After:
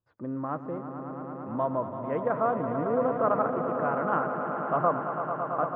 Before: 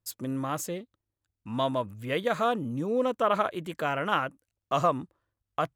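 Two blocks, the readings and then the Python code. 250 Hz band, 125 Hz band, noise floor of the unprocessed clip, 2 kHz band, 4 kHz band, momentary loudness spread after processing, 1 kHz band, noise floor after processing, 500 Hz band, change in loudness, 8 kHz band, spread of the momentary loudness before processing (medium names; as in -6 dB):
+0.5 dB, -0.5 dB, under -85 dBFS, -3.0 dB, under -25 dB, 11 LU, +1.5 dB, -40 dBFS, +1.5 dB, +0.5 dB, no reading, 11 LU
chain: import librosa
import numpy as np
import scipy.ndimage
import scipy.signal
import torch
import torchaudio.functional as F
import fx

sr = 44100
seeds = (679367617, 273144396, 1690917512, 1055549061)

y = scipy.signal.sosfilt(scipy.signal.butter(4, 1400.0, 'lowpass', fs=sr, output='sos'), x)
y = fx.low_shelf(y, sr, hz=120.0, db=-8.5)
y = fx.echo_swell(y, sr, ms=111, loudest=5, wet_db=-10.5)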